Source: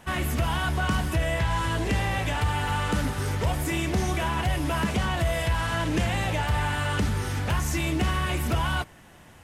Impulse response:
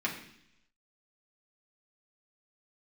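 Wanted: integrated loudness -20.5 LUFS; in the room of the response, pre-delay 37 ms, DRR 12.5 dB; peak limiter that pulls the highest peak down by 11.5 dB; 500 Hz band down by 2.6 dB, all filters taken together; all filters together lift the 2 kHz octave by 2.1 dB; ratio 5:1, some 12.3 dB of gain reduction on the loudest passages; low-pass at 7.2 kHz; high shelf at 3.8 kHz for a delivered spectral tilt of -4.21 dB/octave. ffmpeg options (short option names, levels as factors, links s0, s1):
-filter_complex "[0:a]lowpass=7200,equalizer=f=500:t=o:g=-4,equalizer=f=2000:t=o:g=4,highshelf=f=3800:g=-4,acompressor=threshold=0.0178:ratio=5,alimiter=level_in=3.76:limit=0.0631:level=0:latency=1,volume=0.266,asplit=2[s0][s1];[1:a]atrim=start_sample=2205,adelay=37[s2];[s1][s2]afir=irnorm=-1:irlink=0,volume=0.106[s3];[s0][s3]amix=inputs=2:normalize=0,volume=14.1"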